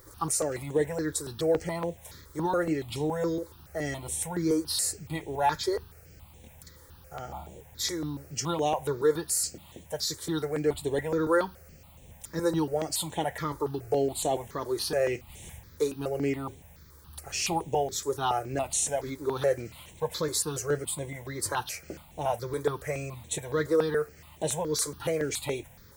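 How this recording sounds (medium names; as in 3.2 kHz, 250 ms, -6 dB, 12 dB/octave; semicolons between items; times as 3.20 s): a quantiser's noise floor 10-bit, dither triangular; notches that jump at a steady rate 7.1 Hz 730–4800 Hz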